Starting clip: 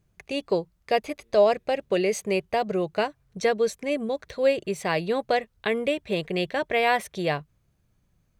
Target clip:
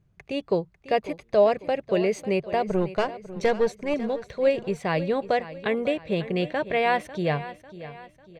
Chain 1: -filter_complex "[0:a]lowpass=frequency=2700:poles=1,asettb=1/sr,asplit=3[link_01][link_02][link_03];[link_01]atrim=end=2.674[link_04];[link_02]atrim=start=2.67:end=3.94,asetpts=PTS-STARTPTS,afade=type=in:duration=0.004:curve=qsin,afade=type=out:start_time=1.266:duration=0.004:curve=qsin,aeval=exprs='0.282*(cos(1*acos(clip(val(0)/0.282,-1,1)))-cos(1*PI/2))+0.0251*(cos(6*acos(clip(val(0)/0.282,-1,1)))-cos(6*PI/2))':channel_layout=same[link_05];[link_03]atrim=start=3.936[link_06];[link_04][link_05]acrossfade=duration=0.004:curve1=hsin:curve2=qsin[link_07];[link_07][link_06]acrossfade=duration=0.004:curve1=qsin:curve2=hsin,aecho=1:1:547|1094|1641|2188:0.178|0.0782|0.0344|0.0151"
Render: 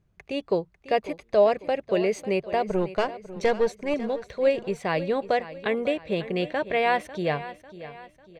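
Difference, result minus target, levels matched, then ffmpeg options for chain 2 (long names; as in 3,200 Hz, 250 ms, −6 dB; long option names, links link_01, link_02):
125 Hz band −3.5 dB
-filter_complex "[0:a]lowpass=frequency=2700:poles=1,equalizer=frequency=130:width=1.4:gain=6,asettb=1/sr,asplit=3[link_01][link_02][link_03];[link_01]atrim=end=2.674[link_04];[link_02]atrim=start=2.67:end=3.94,asetpts=PTS-STARTPTS,afade=type=in:duration=0.004:curve=qsin,afade=type=out:start_time=1.266:duration=0.004:curve=qsin,aeval=exprs='0.282*(cos(1*acos(clip(val(0)/0.282,-1,1)))-cos(1*PI/2))+0.0251*(cos(6*acos(clip(val(0)/0.282,-1,1)))-cos(6*PI/2))':channel_layout=same[link_05];[link_03]atrim=start=3.936[link_06];[link_04][link_05]acrossfade=duration=0.004:curve1=hsin:curve2=qsin[link_07];[link_07][link_06]acrossfade=duration=0.004:curve1=qsin:curve2=hsin,aecho=1:1:547|1094|1641|2188:0.178|0.0782|0.0344|0.0151"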